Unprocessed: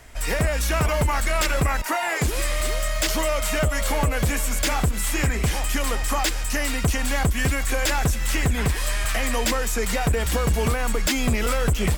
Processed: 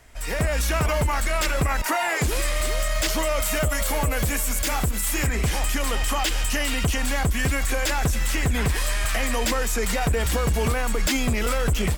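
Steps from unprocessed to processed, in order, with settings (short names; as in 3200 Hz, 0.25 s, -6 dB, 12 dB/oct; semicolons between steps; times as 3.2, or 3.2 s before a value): 3.4–5.27 high shelf 9700 Hz +10 dB; AGC gain up to 11.5 dB; 5.91–6.96 bell 3000 Hz +7 dB 0.32 oct; limiter -9.5 dBFS, peak gain reduction 7.5 dB; gain -5.5 dB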